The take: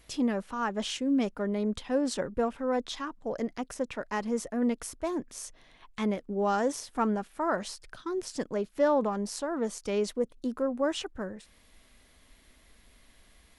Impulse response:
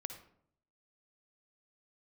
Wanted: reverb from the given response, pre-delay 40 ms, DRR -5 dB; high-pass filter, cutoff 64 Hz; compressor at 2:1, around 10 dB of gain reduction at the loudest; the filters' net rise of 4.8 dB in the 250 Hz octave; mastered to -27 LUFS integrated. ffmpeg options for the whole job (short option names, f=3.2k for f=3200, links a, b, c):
-filter_complex "[0:a]highpass=64,equalizer=f=250:t=o:g=5.5,acompressor=threshold=-37dB:ratio=2,asplit=2[a][b];[1:a]atrim=start_sample=2205,adelay=40[c];[b][c]afir=irnorm=-1:irlink=0,volume=7dB[d];[a][d]amix=inputs=2:normalize=0,volume=3dB"